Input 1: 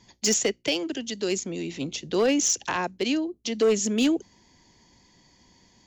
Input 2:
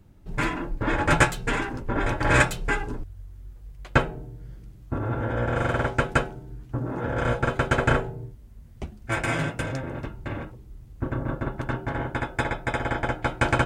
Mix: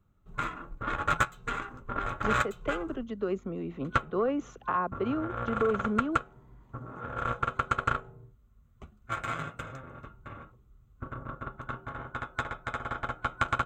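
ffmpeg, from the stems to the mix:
ffmpeg -i stem1.wav -i stem2.wav -filter_complex "[0:a]lowpass=1100,adelay=2000,volume=-1.5dB[link_01];[1:a]aeval=exprs='0.75*(cos(1*acos(clip(val(0)/0.75,-1,1)))-cos(1*PI/2))+0.0668*(cos(3*acos(clip(val(0)/0.75,-1,1)))-cos(3*PI/2))+0.0237*(cos(5*acos(clip(val(0)/0.75,-1,1)))-cos(5*PI/2))+0.075*(cos(7*acos(clip(val(0)/0.75,-1,1)))-cos(7*PI/2))':channel_layout=same,volume=-0.5dB[link_02];[link_01][link_02]amix=inputs=2:normalize=0,superequalizer=6b=0.631:10b=3.55:14b=0.398:16b=0.251,acompressor=threshold=-25dB:ratio=3" out.wav

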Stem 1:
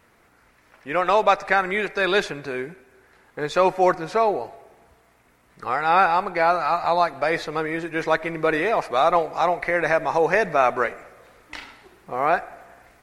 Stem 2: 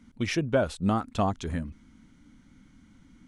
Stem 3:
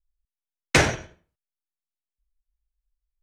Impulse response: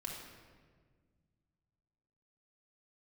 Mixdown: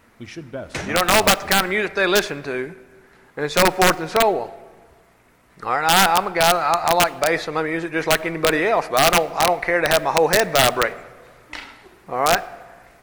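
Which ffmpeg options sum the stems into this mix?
-filter_complex "[0:a]aeval=exprs='(mod(2.99*val(0)+1,2)-1)/2.99':channel_layout=same,volume=2.5dB,asplit=2[link_01][link_02];[link_02]volume=-18.5dB[link_03];[1:a]volume=-9dB,asplit=2[link_04][link_05];[link_05]volume=-10dB[link_06];[2:a]volume=-11dB[link_07];[3:a]atrim=start_sample=2205[link_08];[link_03][link_06]amix=inputs=2:normalize=0[link_09];[link_09][link_08]afir=irnorm=-1:irlink=0[link_10];[link_01][link_04][link_07][link_10]amix=inputs=4:normalize=0"

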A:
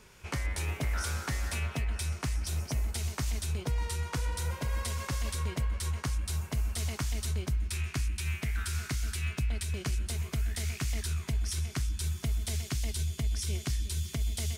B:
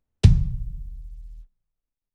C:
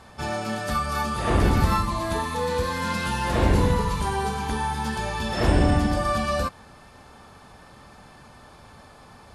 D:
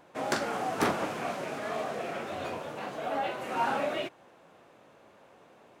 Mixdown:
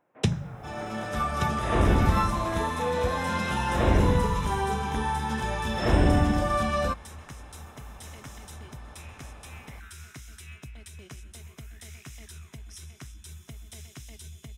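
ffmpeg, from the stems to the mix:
ffmpeg -i stem1.wav -i stem2.wav -i stem3.wav -i stem4.wav -filter_complex "[0:a]highpass=frequency=98:poles=1,adelay=1250,volume=-19.5dB[link_01];[1:a]highpass=220,volume=0.5dB,asplit=2[link_02][link_03];[link_03]volume=-17.5dB[link_04];[2:a]highshelf=frequency=8100:gain=-8,adelay=450,volume=-12.5dB[link_05];[3:a]lowpass=frequency=2400:width=0.5412,lowpass=frequency=2400:width=1.3066,acompressor=threshold=-31dB:ratio=6,volume=-14.5dB[link_06];[link_04]aecho=0:1:1176:1[link_07];[link_01][link_02][link_05][link_06][link_07]amix=inputs=5:normalize=0,dynaudnorm=framelen=130:gausssize=13:maxgain=11dB,asuperstop=centerf=4500:order=4:qfactor=6.5" out.wav

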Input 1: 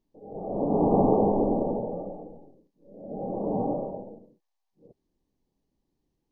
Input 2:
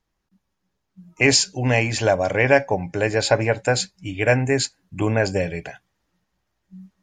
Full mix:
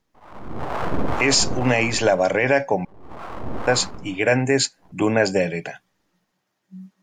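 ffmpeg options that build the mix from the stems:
ffmpeg -i stem1.wav -i stem2.wav -filter_complex "[0:a]acontrast=75,aeval=exprs='abs(val(0))':channel_layout=same,acrossover=split=480[link_01][link_02];[link_01]aeval=exprs='val(0)*(1-0.7/2+0.7/2*cos(2*PI*2*n/s))':channel_layout=same[link_03];[link_02]aeval=exprs='val(0)*(1-0.7/2-0.7/2*cos(2*PI*2*n/s))':channel_layout=same[link_04];[link_03][link_04]amix=inputs=2:normalize=0,volume=-2dB[link_05];[1:a]highpass=frequency=140:width=0.5412,highpass=frequency=140:width=1.3066,volume=3dB,asplit=3[link_06][link_07][link_08];[link_06]atrim=end=2.85,asetpts=PTS-STARTPTS,afade=type=out:start_time=2.846:duration=0.004:curve=hsin[link_09];[link_07]atrim=start=2.85:end=3.67,asetpts=PTS-STARTPTS,volume=0[link_10];[link_08]atrim=start=3.67,asetpts=PTS-STARTPTS,afade=type=in:duration=0.004:curve=hsin[link_11];[link_09][link_10][link_11]concat=n=3:v=0:a=1[link_12];[link_05][link_12]amix=inputs=2:normalize=0,alimiter=limit=-7dB:level=0:latency=1:release=35" out.wav

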